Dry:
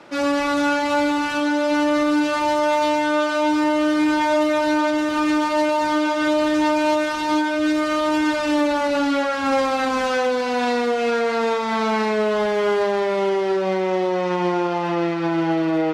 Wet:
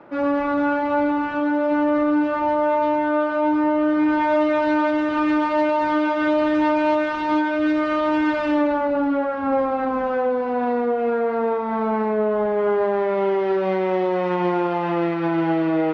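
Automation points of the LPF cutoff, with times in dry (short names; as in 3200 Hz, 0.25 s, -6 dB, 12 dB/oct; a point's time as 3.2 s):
3.84 s 1400 Hz
4.44 s 2400 Hz
8.45 s 2400 Hz
8.96 s 1100 Hz
12.46 s 1100 Hz
13.65 s 2700 Hz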